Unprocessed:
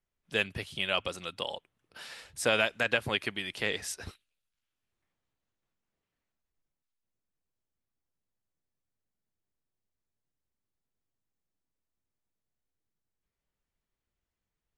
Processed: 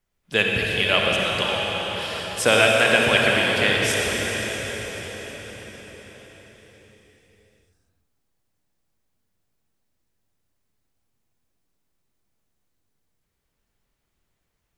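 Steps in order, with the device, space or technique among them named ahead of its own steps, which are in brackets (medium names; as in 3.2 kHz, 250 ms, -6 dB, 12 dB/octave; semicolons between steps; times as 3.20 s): cathedral (reverberation RT60 5.9 s, pre-delay 46 ms, DRR -2.5 dB); trim +8.5 dB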